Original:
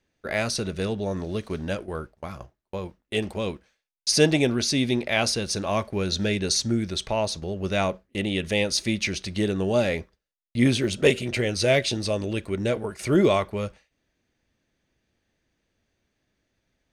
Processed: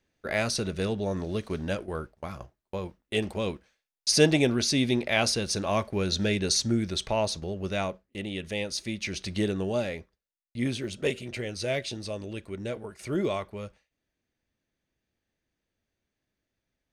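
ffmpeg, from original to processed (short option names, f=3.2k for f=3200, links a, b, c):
-af "volume=5dB,afade=t=out:st=7.3:d=0.71:silence=0.473151,afade=t=in:st=9.01:d=0.29:silence=0.473151,afade=t=out:st=9.3:d=0.64:silence=0.421697"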